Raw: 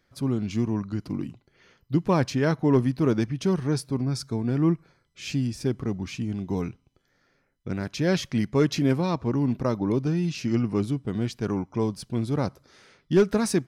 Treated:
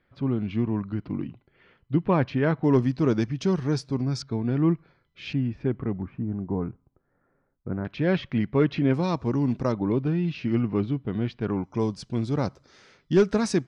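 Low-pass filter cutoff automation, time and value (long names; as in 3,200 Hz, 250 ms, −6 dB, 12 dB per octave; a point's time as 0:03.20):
low-pass filter 24 dB per octave
3,200 Hz
from 0:02.64 6,700 Hz
from 0:04.22 3,900 Hz
from 0:05.33 2,500 Hz
from 0:06.02 1,400 Hz
from 0:07.85 3,200 Hz
from 0:08.94 7,800 Hz
from 0:09.72 3,500 Hz
from 0:11.64 7,400 Hz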